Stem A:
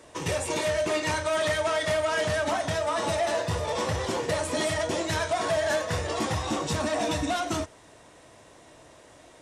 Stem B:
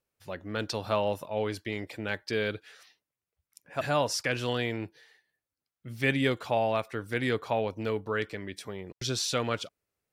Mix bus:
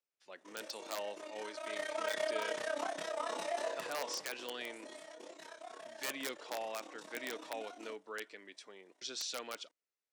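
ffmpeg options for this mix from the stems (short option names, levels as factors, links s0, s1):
-filter_complex "[0:a]tremolo=f=32:d=0.919,flanger=delay=20:depth=5.7:speed=0.25,adelay=300,volume=0.596,afade=t=in:st=1.38:d=0.7:silence=0.281838,afade=t=out:st=3.69:d=0.59:silence=0.251189[s0];[1:a]lowpass=f=7800:w=0.5412,lowpass=f=7800:w=1.3066,tiltshelf=f=1200:g=-4,aeval=exprs='(mod(7.5*val(0)+1,2)-1)/7.5':c=same,volume=0.251[s1];[s0][s1]amix=inputs=2:normalize=0,highpass=f=260:w=0.5412,highpass=f=260:w=1.3066"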